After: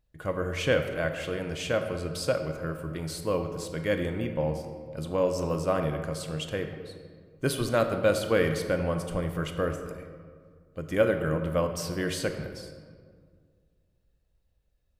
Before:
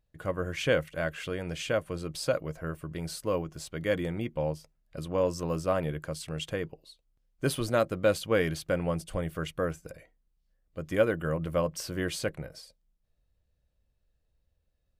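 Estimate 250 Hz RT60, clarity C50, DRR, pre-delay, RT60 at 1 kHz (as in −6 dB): 2.2 s, 7.0 dB, 6.0 dB, 21 ms, 1.8 s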